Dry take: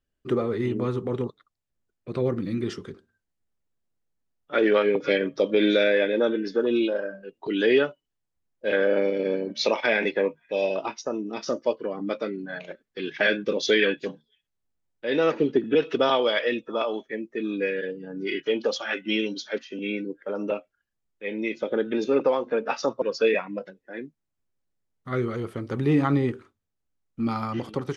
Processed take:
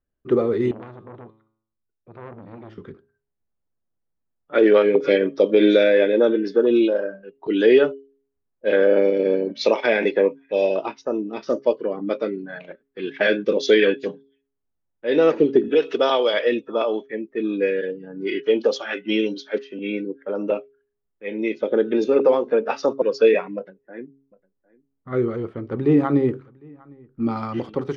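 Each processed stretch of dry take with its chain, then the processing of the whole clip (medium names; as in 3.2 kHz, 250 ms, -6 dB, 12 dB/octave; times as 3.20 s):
0.71–2.78 s: feedback comb 110 Hz, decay 0.65 s, mix 70% + transformer saturation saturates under 1.1 kHz
15.68–16.34 s: high-pass 440 Hz 6 dB/octave + treble shelf 6.1 kHz +8 dB
23.56–27.37 s: treble shelf 2.5 kHz -9.5 dB + delay 755 ms -22.5 dB
whole clip: level-controlled noise filter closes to 1.5 kHz, open at -20 dBFS; de-hum 136.9 Hz, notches 3; dynamic bell 410 Hz, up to +7 dB, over -34 dBFS, Q 0.79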